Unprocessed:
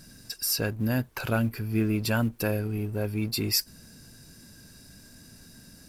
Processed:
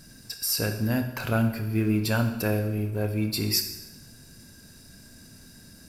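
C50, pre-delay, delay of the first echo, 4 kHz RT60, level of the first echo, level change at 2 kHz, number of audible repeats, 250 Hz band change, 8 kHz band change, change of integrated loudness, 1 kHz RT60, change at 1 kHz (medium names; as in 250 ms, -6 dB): 8.5 dB, 23 ms, no echo, 0.90 s, no echo, +1.0 dB, no echo, +1.5 dB, +1.0 dB, +1.5 dB, 0.90 s, +1.5 dB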